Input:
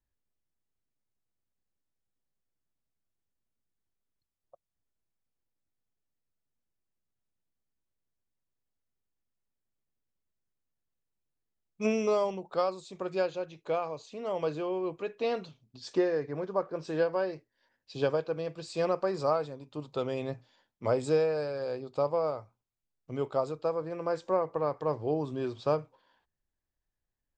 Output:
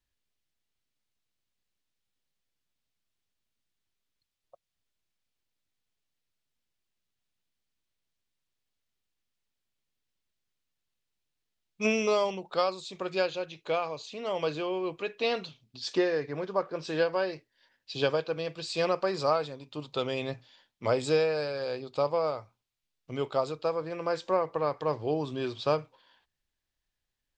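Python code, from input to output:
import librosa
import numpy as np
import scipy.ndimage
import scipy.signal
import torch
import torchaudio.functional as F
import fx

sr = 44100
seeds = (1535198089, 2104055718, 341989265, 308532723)

y = fx.peak_eq(x, sr, hz=3400.0, db=10.5, octaves=2.0)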